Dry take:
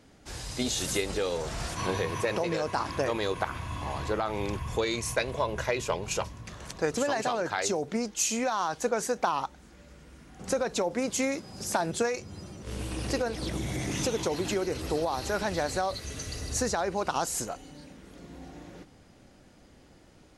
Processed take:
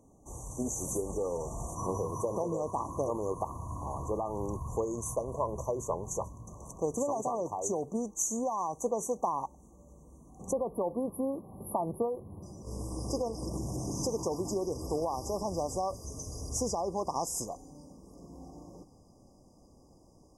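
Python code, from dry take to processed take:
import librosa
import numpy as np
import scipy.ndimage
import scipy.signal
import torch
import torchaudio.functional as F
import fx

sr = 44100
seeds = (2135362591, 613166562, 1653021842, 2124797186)

y = fx.brickwall_bandstop(x, sr, low_hz=1200.0, high_hz=fx.steps((0.0, 5800.0), (10.51, 9900.0), (12.42, 4800.0)))
y = y * librosa.db_to_amplitude(-3.0)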